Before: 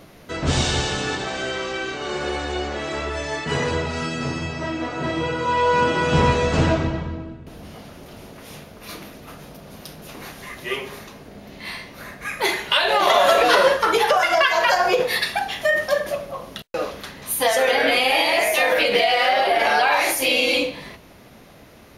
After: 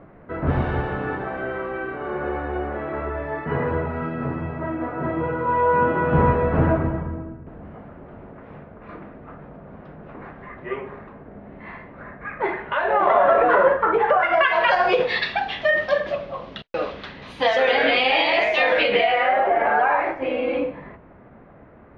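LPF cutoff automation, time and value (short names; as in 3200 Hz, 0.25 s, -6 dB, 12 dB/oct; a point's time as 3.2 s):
LPF 24 dB/oct
13.97 s 1700 Hz
14.89 s 3800 Hz
18.75 s 3800 Hz
19.46 s 1700 Hz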